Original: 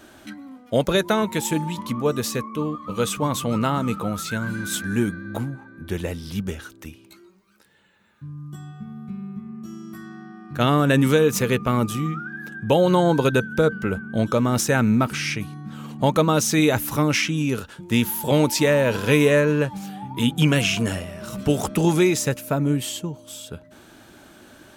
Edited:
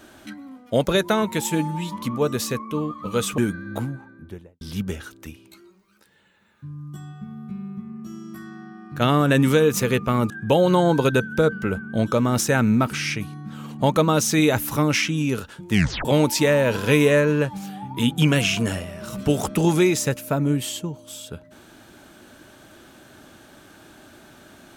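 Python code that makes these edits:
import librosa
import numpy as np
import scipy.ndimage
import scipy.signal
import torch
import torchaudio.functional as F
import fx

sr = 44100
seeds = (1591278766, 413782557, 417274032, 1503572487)

y = fx.studio_fade_out(x, sr, start_s=5.5, length_s=0.7)
y = fx.edit(y, sr, fx.stretch_span(start_s=1.5, length_s=0.32, factor=1.5),
    fx.cut(start_s=3.22, length_s=1.75),
    fx.cut(start_s=11.89, length_s=0.61),
    fx.tape_stop(start_s=17.92, length_s=0.33), tone=tone)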